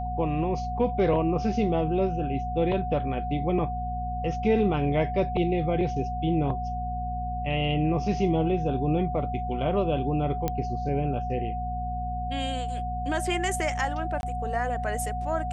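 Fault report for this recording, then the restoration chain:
mains hum 60 Hz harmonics 4 −33 dBFS
whistle 730 Hz −31 dBFS
0:10.48: click −13 dBFS
0:14.21–0:14.23: drop-out 21 ms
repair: click removal
hum removal 60 Hz, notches 4
notch filter 730 Hz, Q 30
repair the gap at 0:14.21, 21 ms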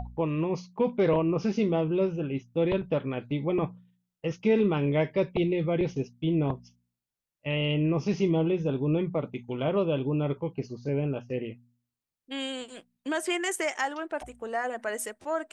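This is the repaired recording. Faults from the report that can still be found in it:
none of them is left

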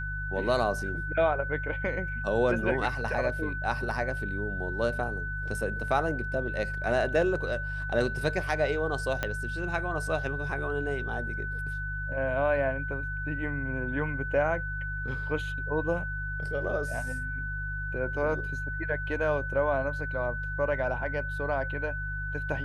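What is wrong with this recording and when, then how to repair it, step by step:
mains hum 50 Hz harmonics 3 −36 dBFS
whistle 1,500 Hz −34 dBFS
0:09.23: click −14 dBFS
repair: click removal
hum removal 50 Hz, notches 3
notch filter 1,500 Hz, Q 30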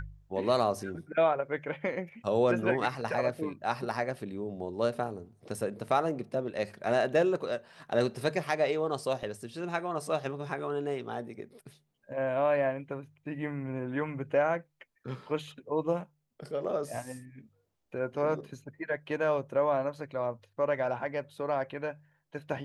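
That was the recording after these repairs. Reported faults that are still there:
0:09.23: click

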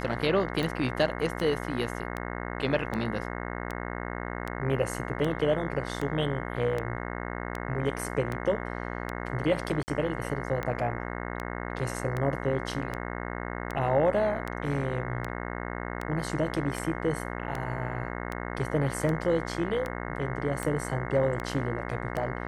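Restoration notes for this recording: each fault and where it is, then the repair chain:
mains buzz 60 Hz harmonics 36 −35 dBFS
scratch tick 78 rpm −19 dBFS
0:09.83–0:09.88: drop-out 49 ms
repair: click removal
hum removal 60 Hz, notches 36
repair the gap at 0:09.83, 49 ms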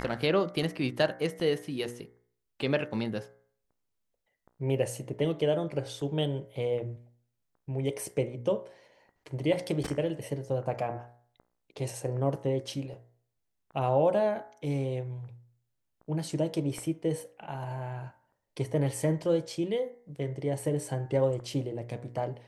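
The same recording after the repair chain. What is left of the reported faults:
none of them is left

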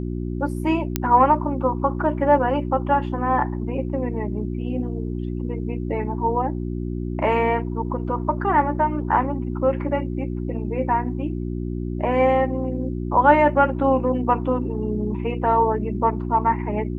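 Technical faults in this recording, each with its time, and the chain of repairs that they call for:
mains hum 60 Hz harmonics 6 −27 dBFS
0:00.96: click −5 dBFS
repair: click removal
hum removal 60 Hz, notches 6

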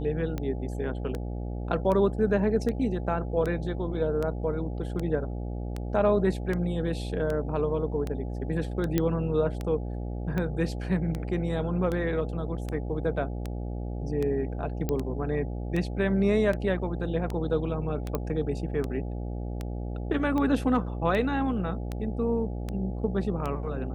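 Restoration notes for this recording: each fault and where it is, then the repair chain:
mains buzz 60 Hz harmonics 14 −33 dBFS
scratch tick 78 rpm −19 dBFS
0:08.98: click −11 dBFS
0:14.89: click −15 dBFS
0:18.15: click −15 dBFS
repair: click removal
hum removal 60 Hz, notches 14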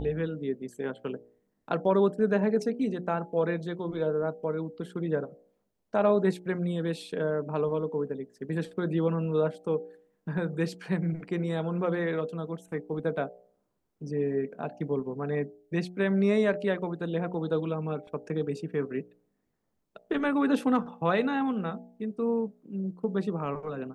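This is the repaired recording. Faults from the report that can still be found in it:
0:08.98: click

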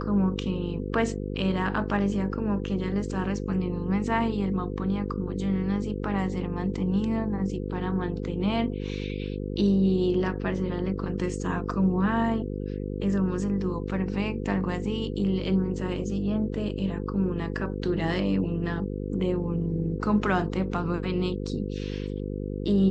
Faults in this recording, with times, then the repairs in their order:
mains buzz 50 Hz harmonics 10 −32 dBFS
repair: hum removal 50 Hz, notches 10

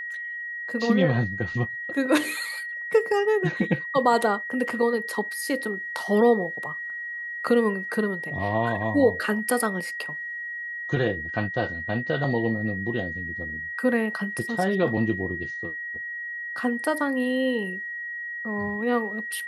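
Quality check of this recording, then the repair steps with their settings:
whistle 1,900 Hz −31 dBFS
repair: notch filter 1,900 Hz, Q 30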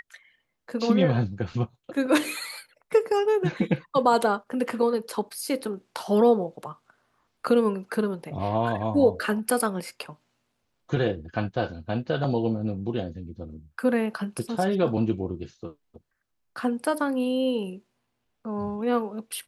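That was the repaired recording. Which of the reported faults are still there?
none of them is left

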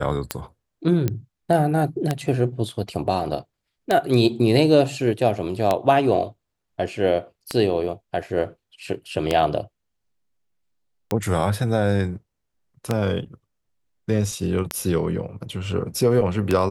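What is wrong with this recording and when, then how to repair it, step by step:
scratch tick 33 1/3 rpm −6 dBFS
0:01.08: click −10 dBFS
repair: click removal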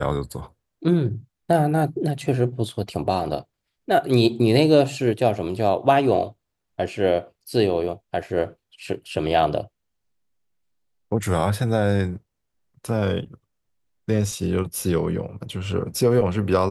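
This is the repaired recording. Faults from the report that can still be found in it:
none of them is left

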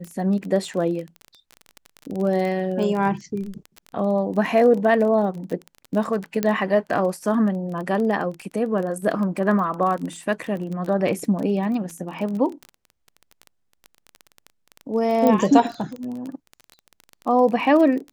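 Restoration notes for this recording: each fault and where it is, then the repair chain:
surface crackle 23 per second −27 dBFS
0:06.43: click −8 dBFS
0:15.27: click −8 dBFS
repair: click removal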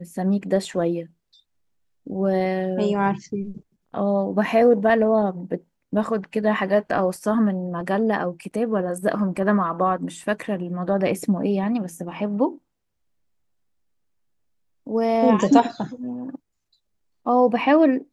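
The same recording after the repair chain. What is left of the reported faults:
none of them is left

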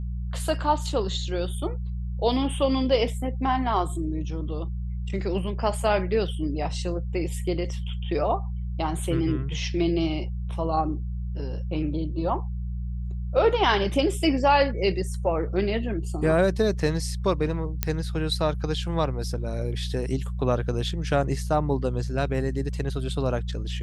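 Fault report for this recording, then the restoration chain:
mains hum 60 Hz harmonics 3 −30 dBFS
0:17.83: click −7 dBFS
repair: click removal
hum removal 60 Hz, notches 3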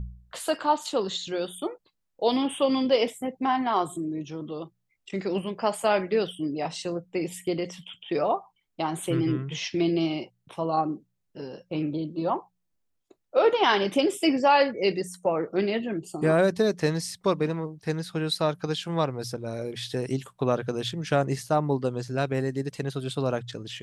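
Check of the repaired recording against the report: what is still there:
none of them is left

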